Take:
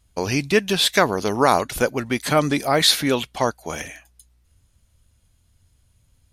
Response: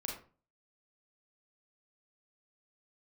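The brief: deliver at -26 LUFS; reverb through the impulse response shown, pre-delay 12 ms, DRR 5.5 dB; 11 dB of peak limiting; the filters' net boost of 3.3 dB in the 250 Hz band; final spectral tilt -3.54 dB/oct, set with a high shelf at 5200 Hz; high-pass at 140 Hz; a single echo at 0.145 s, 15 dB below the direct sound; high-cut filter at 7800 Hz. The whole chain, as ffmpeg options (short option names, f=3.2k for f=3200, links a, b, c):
-filter_complex "[0:a]highpass=140,lowpass=7.8k,equalizer=f=250:t=o:g=4.5,highshelf=f=5.2k:g=5.5,alimiter=limit=-11dB:level=0:latency=1,aecho=1:1:145:0.178,asplit=2[a][b];[1:a]atrim=start_sample=2205,adelay=12[c];[b][c]afir=irnorm=-1:irlink=0,volume=-6dB[d];[a][d]amix=inputs=2:normalize=0,volume=-4dB"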